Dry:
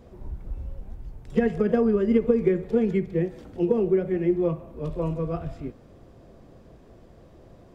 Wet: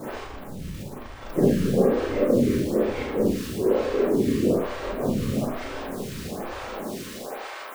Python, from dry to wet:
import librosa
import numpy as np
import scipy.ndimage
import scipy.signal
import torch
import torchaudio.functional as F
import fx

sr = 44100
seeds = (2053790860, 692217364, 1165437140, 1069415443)

y = x + 0.5 * 10.0 ** (-24.5 / 20.0) * np.sign(x)
y = fx.filter_sweep_highpass(y, sr, from_hz=80.0, to_hz=1000.0, start_s=6.49, end_s=7.65, q=0.87)
y = fx.whisperise(y, sr, seeds[0])
y = fx.rev_schroeder(y, sr, rt60_s=0.59, comb_ms=29, drr_db=-5.5)
y = fx.stagger_phaser(y, sr, hz=1.1)
y = F.gain(torch.from_numpy(y), -5.5).numpy()